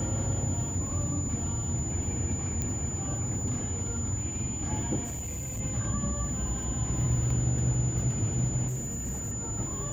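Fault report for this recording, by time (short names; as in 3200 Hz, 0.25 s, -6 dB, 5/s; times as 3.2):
tone 7000 Hz -35 dBFS
2.62 pop -18 dBFS
5.04–5.61 clipped -32 dBFS
8.67–9.33 clipped -29.5 dBFS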